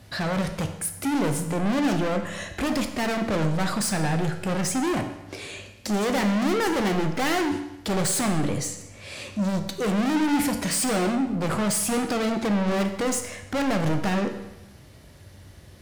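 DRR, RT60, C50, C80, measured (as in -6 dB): 6.0 dB, 0.95 s, 9.0 dB, 11.0 dB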